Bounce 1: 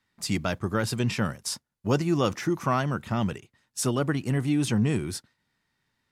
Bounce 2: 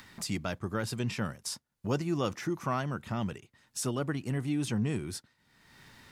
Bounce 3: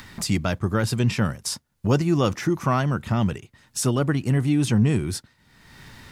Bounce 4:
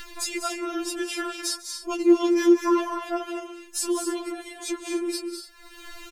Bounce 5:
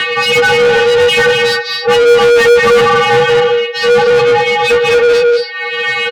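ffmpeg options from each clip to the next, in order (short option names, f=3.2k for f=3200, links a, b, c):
-af "acompressor=mode=upward:threshold=-26dB:ratio=2.5,volume=-6.5dB"
-af "lowshelf=f=120:g=8.5,volume=8.5dB"
-filter_complex "[0:a]acompressor=threshold=-37dB:ratio=1.5,asplit=2[a][b];[b]aecho=0:1:145|198|238|288:0.106|0.355|0.376|0.188[c];[a][c]amix=inputs=2:normalize=0,afftfilt=real='re*4*eq(mod(b,16),0)':imag='im*4*eq(mod(b,16),0)':win_size=2048:overlap=0.75,volume=6.5dB"
-filter_complex "[0:a]aecho=1:1:17|31:0.631|0.335,highpass=f=160:t=q:w=0.5412,highpass=f=160:t=q:w=1.307,lowpass=f=3.6k:t=q:w=0.5176,lowpass=f=3.6k:t=q:w=0.7071,lowpass=f=3.6k:t=q:w=1.932,afreqshift=130,asplit=2[a][b];[b]highpass=f=720:p=1,volume=37dB,asoftclip=type=tanh:threshold=-4.5dB[c];[a][c]amix=inputs=2:normalize=0,lowpass=f=2.9k:p=1,volume=-6dB,volume=3.5dB"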